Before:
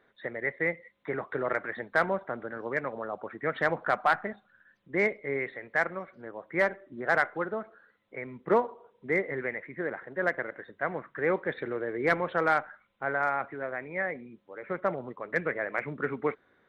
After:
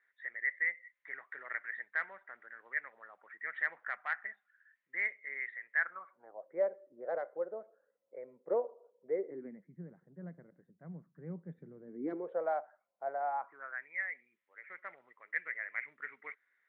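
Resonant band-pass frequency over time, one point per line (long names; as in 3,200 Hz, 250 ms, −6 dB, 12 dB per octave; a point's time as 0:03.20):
resonant band-pass, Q 6
0:05.75 1,900 Hz
0:06.50 540 Hz
0:09.09 540 Hz
0:09.69 170 Hz
0:11.79 170 Hz
0:12.48 670 Hz
0:13.22 670 Hz
0:13.91 2,000 Hz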